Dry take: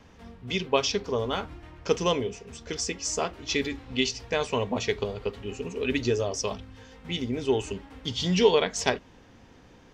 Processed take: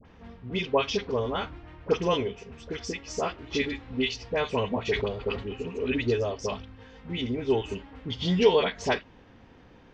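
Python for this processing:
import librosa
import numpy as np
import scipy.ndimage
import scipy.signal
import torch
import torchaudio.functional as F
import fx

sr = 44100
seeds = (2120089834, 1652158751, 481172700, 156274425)

y = scipy.signal.sosfilt(scipy.signal.butter(2, 3600.0, 'lowpass', fs=sr, output='sos'), x)
y = fx.dispersion(y, sr, late='highs', ms=53.0, hz=1200.0)
y = fx.sustainer(y, sr, db_per_s=91.0, at=(4.85, 5.53))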